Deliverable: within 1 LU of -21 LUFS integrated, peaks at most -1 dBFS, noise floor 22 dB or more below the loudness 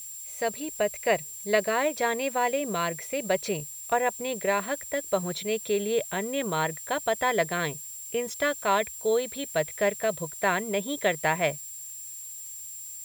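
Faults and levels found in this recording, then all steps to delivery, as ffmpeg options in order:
steady tone 7400 Hz; tone level -39 dBFS; noise floor -41 dBFS; noise floor target -51 dBFS; loudness -28.5 LUFS; peak -9.5 dBFS; loudness target -21.0 LUFS
-> -af "bandreject=f=7.4k:w=30"
-af "afftdn=nr=10:nf=-41"
-af "volume=7.5dB"

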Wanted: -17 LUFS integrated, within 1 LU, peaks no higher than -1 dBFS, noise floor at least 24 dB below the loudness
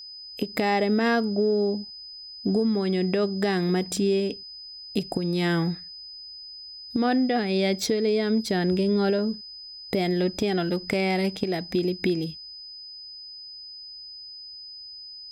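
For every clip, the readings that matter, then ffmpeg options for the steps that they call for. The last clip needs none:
steady tone 5000 Hz; tone level -39 dBFS; loudness -25.0 LUFS; peak -10.0 dBFS; loudness target -17.0 LUFS
-> -af "bandreject=f=5k:w=30"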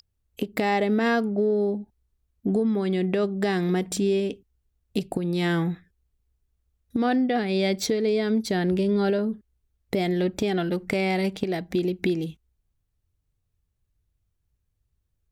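steady tone none; loudness -25.5 LUFS; peak -10.5 dBFS; loudness target -17.0 LUFS
-> -af "volume=8.5dB"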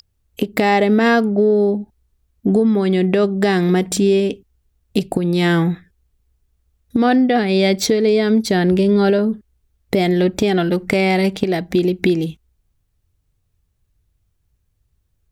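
loudness -17.0 LUFS; peak -2.0 dBFS; noise floor -67 dBFS

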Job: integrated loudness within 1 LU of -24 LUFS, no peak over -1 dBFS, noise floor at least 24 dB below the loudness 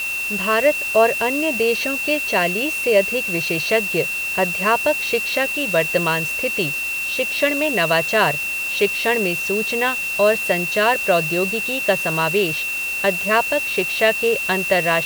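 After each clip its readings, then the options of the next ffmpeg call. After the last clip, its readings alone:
steady tone 2700 Hz; tone level -22 dBFS; noise floor -25 dBFS; noise floor target -43 dBFS; loudness -18.5 LUFS; peak -2.5 dBFS; loudness target -24.0 LUFS
-> -af "bandreject=f=2.7k:w=30"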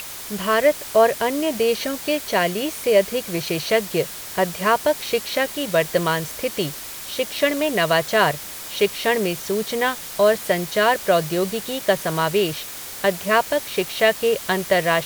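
steady tone none; noise floor -34 dBFS; noise floor target -45 dBFS
-> -af "afftdn=nr=11:nf=-34"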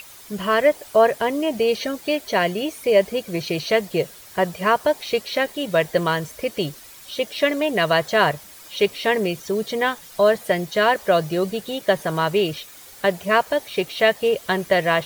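noise floor -44 dBFS; noise floor target -46 dBFS
-> -af "afftdn=nr=6:nf=-44"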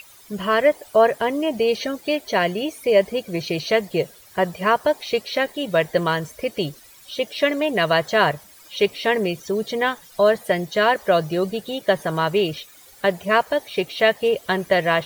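noise floor -48 dBFS; loudness -21.5 LUFS; peak -3.5 dBFS; loudness target -24.0 LUFS
-> -af "volume=-2.5dB"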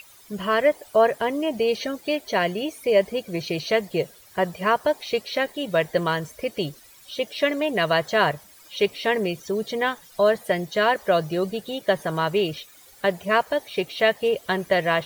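loudness -24.0 LUFS; peak -6.0 dBFS; noise floor -50 dBFS

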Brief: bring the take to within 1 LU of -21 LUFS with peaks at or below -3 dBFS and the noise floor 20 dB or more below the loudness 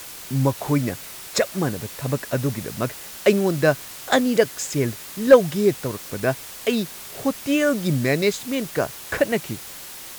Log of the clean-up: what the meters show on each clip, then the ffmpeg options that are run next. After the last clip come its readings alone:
noise floor -38 dBFS; noise floor target -43 dBFS; loudness -22.5 LUFS; peak -2.0 dBFS; loudness target -21.0 LUFS
-> -af "afftdn=nr=6:nf=-38"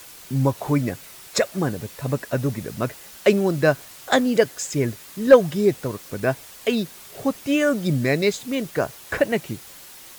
noise floor -43 dBFS; loudness -22.5 LUFS; peak -2.5 dBFS; loudness target -21.0 LUFS
-> -af "volume=1.5dB,alimiter=limit=-3dB:level=0:latency=1"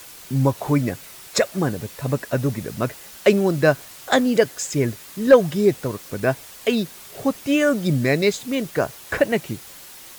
loudness -21.5 LUFS; peak -3.0 dBFS; noise floor -42 dBFS

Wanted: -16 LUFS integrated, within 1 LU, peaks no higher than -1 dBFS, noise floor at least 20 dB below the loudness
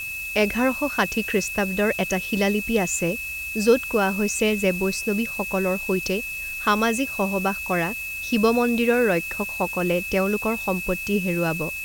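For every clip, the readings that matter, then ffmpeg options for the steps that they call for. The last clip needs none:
steady tone 2600 Hz; tone level -29 dBFS; noise floor -32 dBFS; noise floor target -43 dBFS; loudness -23.0 LUFS; peak -6.0 dBFS; loudness target -16.0 LUFS
-> -af "bandreject=f=2.6k:w=30"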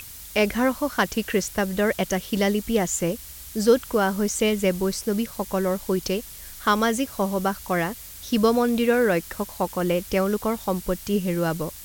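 steady tone none; noise floor -41 dBFS; noise floor target -44 dBFS
-> -af "afftdn=nr=6:nf=-41"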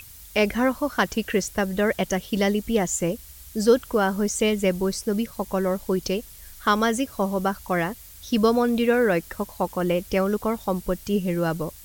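noise floor -45 dBFS; loudness -24.0 LUFS; peak -6.5 dBFS; loudness target -16.0 LUFS
-> -af "volume=8dB,alimiter=limit=-1dB:level=0:latency=1"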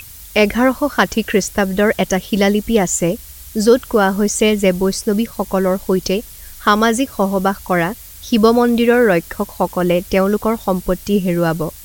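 loudness -16.0 LUFS; peak -1.0 dBFS; noise floor -37 dBFS

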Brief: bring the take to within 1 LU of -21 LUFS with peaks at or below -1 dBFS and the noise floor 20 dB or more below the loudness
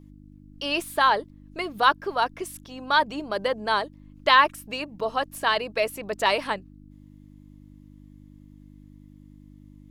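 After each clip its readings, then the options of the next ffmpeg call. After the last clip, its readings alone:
hum 50 Hz; harmonics up to 300 Hz; hum level -46 dBFS; loudness -24.5 LUFS; peak -3.5 dBFS; loudness target -21.0 LUFS
-> -af "bandreject=f=50:t=h:w=4,bandreject=f=100:t=h:w=4,bandreject=f=150:t=h:w=4,bandreject=f=200:t=h:w=4,bandreject=f=250:t=h:w=4,bandreject=f=300:t=h:w=4"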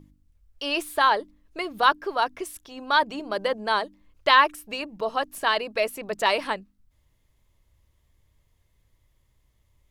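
hum none; loudness -24.5 LUFS; peak -3.0 dBFS; loudness target -21.0 LUFS
-> -af "volume=3.5dB,alimiter=limit=-1dB:level=0:latency=1"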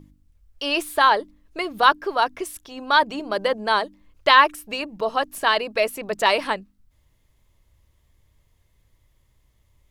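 loudness -21.0 LUFS; peak -1.0 dBFS; noise floor -64 dBFS

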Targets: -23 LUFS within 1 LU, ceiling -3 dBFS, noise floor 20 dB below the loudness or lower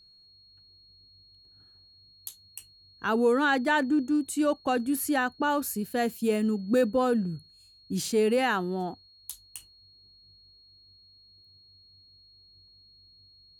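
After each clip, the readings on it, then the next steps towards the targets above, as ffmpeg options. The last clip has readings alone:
steady tone 4300 Hz; tone level -55 dBFS; loudness -27.0 LUFS; peak -14.5 dBFS; loudness target -23.0 LUFS
-> -af "bandreject=f=4.3k:w=30"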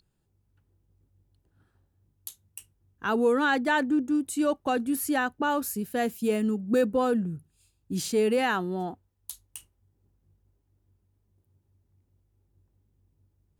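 steady tone none; loudness -27.0 LUFS; peak -14.5 dBFS; loudness target -23.0 LUFS
-> -af "volume=4dB"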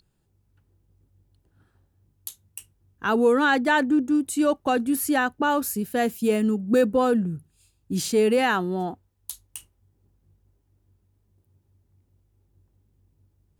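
loudness -23.0 LUFS; peak -10.5 dBFS; noise floor -69 dBFS

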